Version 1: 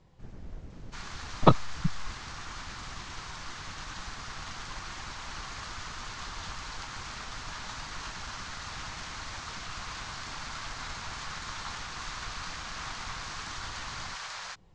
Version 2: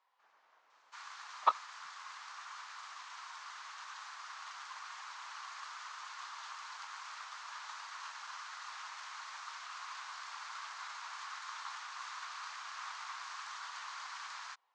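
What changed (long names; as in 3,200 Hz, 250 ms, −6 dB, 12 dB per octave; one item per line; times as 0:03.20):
speech: add high-frequency loss of the air 92 metres
master: add four-pole ladder high-pass 870 Hz, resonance 45%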